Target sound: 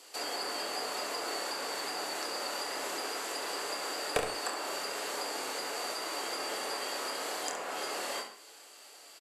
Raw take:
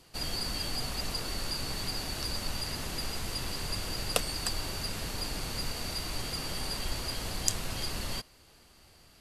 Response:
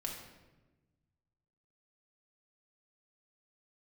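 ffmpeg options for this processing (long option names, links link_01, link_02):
-filter_complex "[0:a]highpass=frequency=380:width=0.5412,highpass=frequency=380:width=1.3066,equalizer=frequency=7500:width_type=o:width=0.29:gain=8,acrossover=split=2000[link_01][link_02];[link_02]acompressor=threshold=-46dB:ratio=5[link_03];[link_01][link_03]amix=inputs=2:normalize=0,aeval=exprs='0.0841*(abs(mod(val(0)/0.0841+3,4)-2)-1)':channel_layout=same,aecho=1:1:27|68:0.501|0.335,asplit=2[link_04][link_05];[1:a]atrim=start_sample=2205,afade=type=out:start_time=0.14:duration=0.01,atrim=end_sample=6615,asetrate=28224,aresample=44100[link_06];[link_05][link_06]afir=irnorm=-1:irlink=0,volume=-2.5dB[link_07];[link_04][link_07]amix=inputs=2:normalize=0"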